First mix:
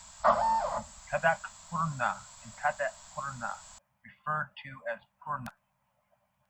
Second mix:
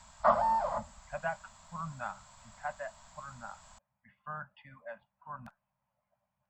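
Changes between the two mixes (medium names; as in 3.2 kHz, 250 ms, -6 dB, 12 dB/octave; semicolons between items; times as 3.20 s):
speech -7.5 dB; master: add treble shelf 2.8 kHz -10.5 dB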